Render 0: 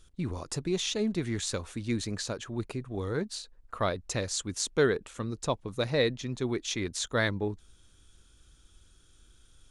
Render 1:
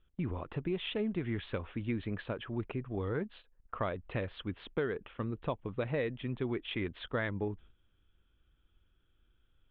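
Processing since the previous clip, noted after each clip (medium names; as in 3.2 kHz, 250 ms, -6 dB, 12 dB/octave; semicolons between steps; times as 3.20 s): steep low-pass 3.3 kHz 72 dB/octave; gate -50 dBFS, range -10 dB; compression 5:1, threshold -29 dBFS, peak gain reduction 9.5 dB; trim -1 dB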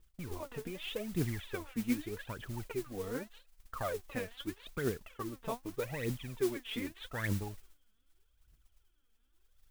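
in parallel at -9 dB: word length cut 8-bit, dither none; on the sum: phaser 0.82 Hz, delay 4.7 ms, feedback 79%; modulation noise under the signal 15 dB; trim -8.5 dB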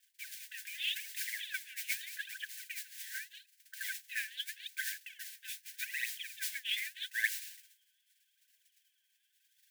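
brick-wall FIR high-pass 1.5 kHz; trim +7.5 dB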